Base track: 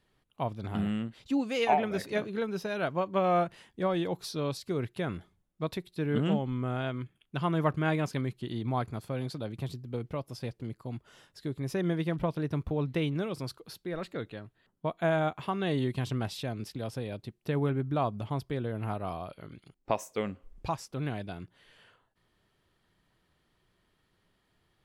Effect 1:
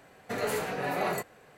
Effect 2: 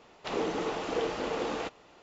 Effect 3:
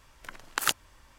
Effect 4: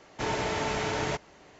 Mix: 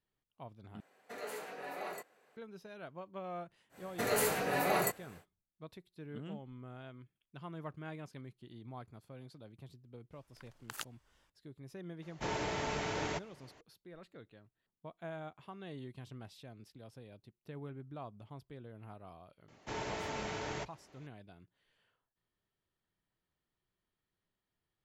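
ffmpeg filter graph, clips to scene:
-filter_complex "[1:a]asplit=2[a][b];[4:a]asplit=2[c][d];[0:a]volume=-17dB[e];[a]highpass=300[f];[b]highshelf=f=6.9k:g=10[g];[e]asplit=2[h][i];[h]atrim=end=0.804[j];[f]atrim=end=1.57,asetpts=PTS-STARTPTS,volume=-12dB[k];[i]atrim=start=2.366[l];[g]atrim=end=1.57,asetpts=PTS-STARTPTS,volume=-1.5dB,afade=t=in:d=0.1,afade=t=out:st=1.47:d=0.1,adelay=162729S[m];[3:a]atrim=end=1.18,asetpts=PTS-STARTPTS,volume=-17dB,afade=t=in:d=0.004:c=hsin,afade=t=out:st=1.176:d=0.004:c=hsin,adelay=10120[n];[c]atrim=end=1.59,asetpts=PTS-STARTPTS,volume=-7dB,afade=t=in:d=0.004:c=hsin,afade=t=out:st=1.586:d=0.004:c=hsin,adelay=12020[o];[d]atrim=end=1.59,asetpts=PTS-STARTPTS,volume=-10dB,afade=t=in:d=0.004:c=hsin,afade=t=out:st=1.586:d=0.004:c=hsin,adelay=19480[p];[j][k]acrossfade=d=0.004:c1=hsin:c2=hsin[q];[q][l]acrossfade=d=0.004:c1=hsin:c2=hsin[r];[r][m][n][o][p]amix=inputs=5:normalize=0"

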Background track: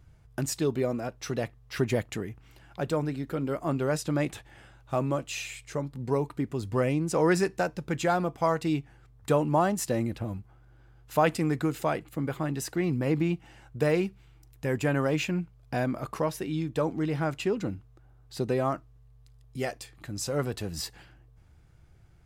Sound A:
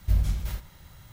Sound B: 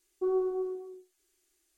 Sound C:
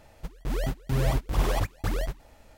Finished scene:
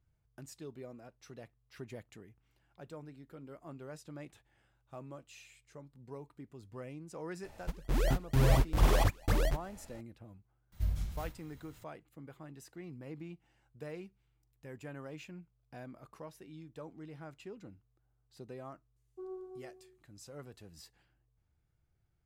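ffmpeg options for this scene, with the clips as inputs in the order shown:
-filter_complex "[0:a]volume=-19.5dB[a];[3:a]atrim=end=2.57,asetpts=PTS-STARTPTS,volume=-1dB,afade=t=in:d=0.004:c=hsin,afade=t=out:st=2.566:d=0.004:c=hsin,adelay=7440[b];[1:a]atrim=end=1.12,asetpts=PTS-STARTPTS,volume=-10dB,afade=t=in:d=0.004:c=hsin,afade=t=out:st=1.116:d=0.004:c=hsin,adelay=10720[c];[2:a]atrim=end=1.77,asetpts=PTS-STARTPTS,volume=-16dB,afade=t=in:d=0.004:c=hsin,afade=t=out:st=1.766:d=0.004:c=hsin,adelay=18960[d];[a][b][c][d]amix=inputs=4:normalize=0"

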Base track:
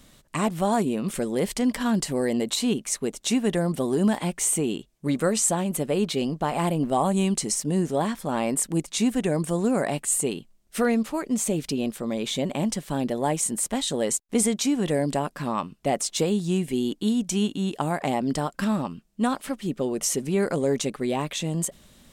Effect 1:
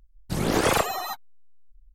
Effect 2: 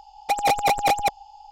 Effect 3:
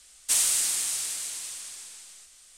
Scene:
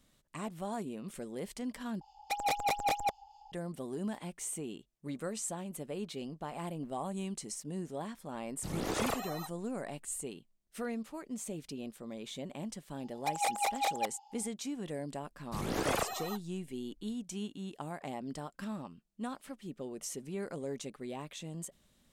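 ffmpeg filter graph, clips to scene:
-filter_complex "[2:a]asplit=2[a][b];[1:a]asplit=2[c][d];[0:a]volume=-15.5dB[e];[a]acrossover=split=1300[f][g];[f]aeval=exprs='val(0)*(1-0.5/2+0.5/2*cos(2*PI*4.8*n/s))':c=same[h];[g]aeval=exprs='val(0)*(1-0.5/2-0.5/2*cos(2*PI*4.8*n/s))':c=same[i];[h][i]amix=inputs=2:normalize=0[j];[c]bandreject=f=1.6k:w=18[k];[b]highpass=590[l];[e]asplit=2[m][n];[m]atrim=end=2.014[o];[j]atrim=end=1.51,asetpts=PTS-STARTPTS,volume=-8.5dB[p];[n]atrim=start=3.516[q];[k]atrim=end=1.94,asetpts=PTS-STARTPTS,volume=-12.5dB,afade=t=in:d=0.004:c=hsin,afade=t=out:st=1.936:d=0.004:c=hsin,adelay=8330[r];[l]atrim=end=1.51,asetpts=PTS-STARTPTS,volume=-11dB,afade=t=in:d=0.004:c=hsin,afade=t=out:st=1.506:d=0.004:c=hsin,adelay=12970[s];[d]atrim=end=1.94,asetpts=PTS-STARTPTS,volume=-11dB,afade=t=in:d=0.004:c=hsin,afade=t=out:st=1.936:d=0.004:c=hsin,adelay=15220[t];[o][p]acrossfade=d=0.004:c1=hsin:c2=hsin[u];[u][q]acrossfade=d=0.004:c1=hsin:c2=hsin[v];[v][r][s][t]amix=inputs=4:normalize=0"

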